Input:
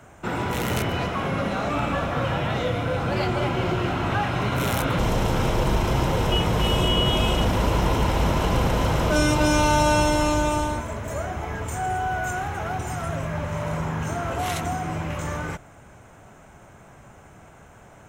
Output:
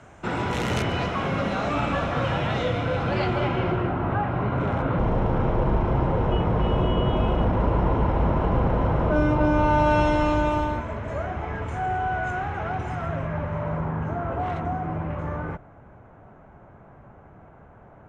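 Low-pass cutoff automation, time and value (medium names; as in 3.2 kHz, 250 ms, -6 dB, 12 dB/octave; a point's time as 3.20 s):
2.55 s 6.4 kHz
3.53 s 3.2 kHz
3.94 s 1.3 kHz
9.55 s 1.3 kHz
10.04 s 2.6 kHz
12.90 s 2.6 kHz
13.95 s 1.3 kHz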